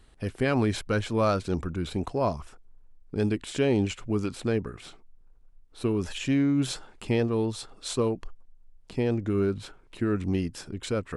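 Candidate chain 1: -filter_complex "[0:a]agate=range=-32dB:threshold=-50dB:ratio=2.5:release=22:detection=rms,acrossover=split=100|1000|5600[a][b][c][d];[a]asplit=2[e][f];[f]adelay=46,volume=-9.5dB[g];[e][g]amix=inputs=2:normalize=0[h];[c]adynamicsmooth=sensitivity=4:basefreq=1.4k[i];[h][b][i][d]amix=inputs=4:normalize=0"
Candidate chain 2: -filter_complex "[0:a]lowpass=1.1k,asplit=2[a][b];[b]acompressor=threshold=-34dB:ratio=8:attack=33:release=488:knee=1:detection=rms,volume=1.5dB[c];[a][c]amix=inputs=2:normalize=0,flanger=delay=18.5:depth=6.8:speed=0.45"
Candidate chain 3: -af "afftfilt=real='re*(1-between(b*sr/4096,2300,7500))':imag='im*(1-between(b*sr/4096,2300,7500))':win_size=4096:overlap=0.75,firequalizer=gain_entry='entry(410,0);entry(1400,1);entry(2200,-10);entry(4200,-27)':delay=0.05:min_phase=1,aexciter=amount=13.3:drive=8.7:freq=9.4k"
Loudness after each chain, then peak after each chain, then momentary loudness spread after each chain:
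-28.5, -30.0, -28.5 LUFS; -11.5, -12.5, -13.5 dBFS; 12, 10, 11 LU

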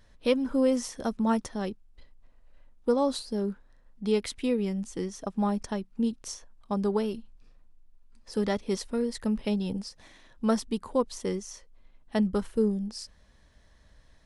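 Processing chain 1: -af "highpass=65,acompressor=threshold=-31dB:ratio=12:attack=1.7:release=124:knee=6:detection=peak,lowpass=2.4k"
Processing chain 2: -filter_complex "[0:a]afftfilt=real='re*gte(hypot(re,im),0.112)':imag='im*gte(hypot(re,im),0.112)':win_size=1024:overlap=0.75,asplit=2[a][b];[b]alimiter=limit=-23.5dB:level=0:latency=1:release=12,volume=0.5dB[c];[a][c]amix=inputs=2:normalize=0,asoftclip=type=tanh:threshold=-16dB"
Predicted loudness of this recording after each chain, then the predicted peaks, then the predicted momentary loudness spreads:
-39.0, -27.0 LUFS; -26.0, -16.5 dBFS; 8, 8 LU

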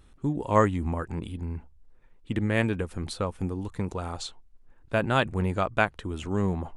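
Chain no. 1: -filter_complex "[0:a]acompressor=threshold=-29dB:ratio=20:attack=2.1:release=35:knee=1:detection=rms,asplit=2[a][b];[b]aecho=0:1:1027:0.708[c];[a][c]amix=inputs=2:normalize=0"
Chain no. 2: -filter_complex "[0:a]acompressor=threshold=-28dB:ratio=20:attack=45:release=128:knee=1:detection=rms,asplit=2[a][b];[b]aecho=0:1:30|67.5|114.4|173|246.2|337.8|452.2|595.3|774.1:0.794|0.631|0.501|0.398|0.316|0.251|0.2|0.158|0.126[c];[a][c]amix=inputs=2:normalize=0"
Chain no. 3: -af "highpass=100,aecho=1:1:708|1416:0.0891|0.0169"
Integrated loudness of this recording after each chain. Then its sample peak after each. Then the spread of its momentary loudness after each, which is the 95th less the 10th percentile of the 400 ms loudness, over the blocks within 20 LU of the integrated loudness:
-35.5, -29.0, -29.0 LUFS; -20.5, -11.5, -5.5 dBFS; 4, 9, 12 LU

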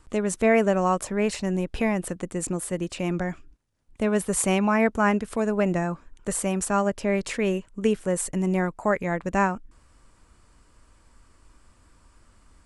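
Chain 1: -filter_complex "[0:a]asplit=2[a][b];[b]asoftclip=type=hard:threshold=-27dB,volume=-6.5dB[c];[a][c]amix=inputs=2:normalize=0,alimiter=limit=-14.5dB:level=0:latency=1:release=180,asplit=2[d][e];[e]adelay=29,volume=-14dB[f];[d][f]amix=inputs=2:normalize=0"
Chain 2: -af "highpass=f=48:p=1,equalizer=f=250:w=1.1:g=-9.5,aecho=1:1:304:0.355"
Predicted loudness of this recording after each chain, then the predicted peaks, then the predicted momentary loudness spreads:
-25.0, -28.0 LUFS; -13.0, -9.5 dBFS; 5, 10 LU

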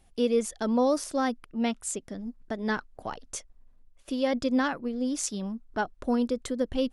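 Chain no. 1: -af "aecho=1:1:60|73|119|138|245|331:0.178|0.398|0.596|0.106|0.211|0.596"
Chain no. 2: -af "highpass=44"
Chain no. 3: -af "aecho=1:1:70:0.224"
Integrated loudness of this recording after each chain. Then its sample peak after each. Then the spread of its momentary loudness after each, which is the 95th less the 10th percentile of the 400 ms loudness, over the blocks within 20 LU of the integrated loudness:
-27.0, -29.5, -29.5 LUFS; -11.0, -13.0, -12.5 dBFS; 12, 13, 13 LU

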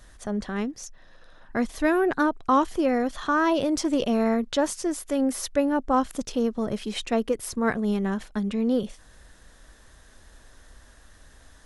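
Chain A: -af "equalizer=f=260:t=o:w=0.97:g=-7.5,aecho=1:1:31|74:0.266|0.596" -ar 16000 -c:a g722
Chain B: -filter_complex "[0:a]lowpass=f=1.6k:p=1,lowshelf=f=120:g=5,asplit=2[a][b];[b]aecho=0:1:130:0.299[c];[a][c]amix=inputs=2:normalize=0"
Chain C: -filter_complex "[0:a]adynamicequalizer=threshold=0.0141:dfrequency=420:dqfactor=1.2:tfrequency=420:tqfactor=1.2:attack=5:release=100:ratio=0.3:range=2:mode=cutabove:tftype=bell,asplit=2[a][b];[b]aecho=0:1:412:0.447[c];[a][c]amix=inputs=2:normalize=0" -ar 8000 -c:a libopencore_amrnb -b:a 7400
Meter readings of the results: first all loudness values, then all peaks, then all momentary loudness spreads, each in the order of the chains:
-27.0, -25.5, -26.5 LUFS; -9.5, -11.0, -11.5 dBFS; 10, 8, 10 LU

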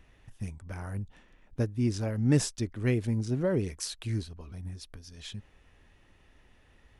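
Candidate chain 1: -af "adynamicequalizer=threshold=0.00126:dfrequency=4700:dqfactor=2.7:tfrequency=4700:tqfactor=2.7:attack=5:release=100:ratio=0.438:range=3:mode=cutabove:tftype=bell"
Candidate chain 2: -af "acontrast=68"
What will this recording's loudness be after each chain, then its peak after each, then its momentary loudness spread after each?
-31.5, -25.0 LUFS; -12.0, -6.5 dBFS; 18, 18 LU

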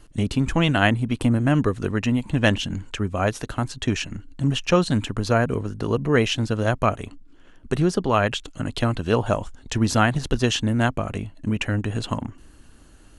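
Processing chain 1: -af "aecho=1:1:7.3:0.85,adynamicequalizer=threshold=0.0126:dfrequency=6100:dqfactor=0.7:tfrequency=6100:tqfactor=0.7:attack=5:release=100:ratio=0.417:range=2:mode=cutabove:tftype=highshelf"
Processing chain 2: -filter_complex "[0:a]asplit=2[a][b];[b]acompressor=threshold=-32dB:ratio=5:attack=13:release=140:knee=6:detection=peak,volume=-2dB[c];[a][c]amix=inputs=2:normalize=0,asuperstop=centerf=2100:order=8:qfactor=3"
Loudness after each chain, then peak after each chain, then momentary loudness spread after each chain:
-20.5, -21.5 LUFS; -1.5, -3.5 dBFS; 10, 8 LU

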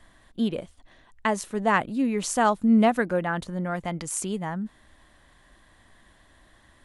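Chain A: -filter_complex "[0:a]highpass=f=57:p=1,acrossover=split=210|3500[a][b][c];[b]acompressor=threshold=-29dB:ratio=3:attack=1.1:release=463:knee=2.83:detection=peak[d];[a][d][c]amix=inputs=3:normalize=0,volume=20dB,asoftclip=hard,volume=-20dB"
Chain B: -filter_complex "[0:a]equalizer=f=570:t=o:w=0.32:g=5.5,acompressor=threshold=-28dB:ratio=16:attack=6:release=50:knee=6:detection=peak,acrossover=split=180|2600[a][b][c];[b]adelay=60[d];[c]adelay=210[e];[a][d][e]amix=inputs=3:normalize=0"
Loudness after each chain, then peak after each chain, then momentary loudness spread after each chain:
-30.5, -34.0 LUFS; -20.0, -13.0 dBFS; 12, 6 LU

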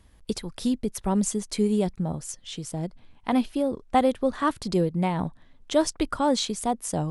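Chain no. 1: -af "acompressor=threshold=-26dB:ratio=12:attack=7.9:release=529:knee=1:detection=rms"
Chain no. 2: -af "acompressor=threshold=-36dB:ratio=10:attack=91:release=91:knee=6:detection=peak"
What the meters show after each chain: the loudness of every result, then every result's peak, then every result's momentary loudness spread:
-34.5, -34.5 LUFS; -16.0, -13.0 dBFS; 5, 5 LU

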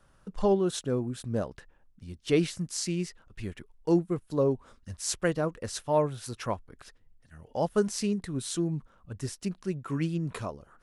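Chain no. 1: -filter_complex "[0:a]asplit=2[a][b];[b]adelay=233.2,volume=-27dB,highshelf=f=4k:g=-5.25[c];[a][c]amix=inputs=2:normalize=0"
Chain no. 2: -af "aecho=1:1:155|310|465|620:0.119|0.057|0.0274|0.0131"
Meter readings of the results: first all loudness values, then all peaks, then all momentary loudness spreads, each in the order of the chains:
-31.0, -31.0 LUFS; -12.5, -12.5 dBFS; 13, 14 LU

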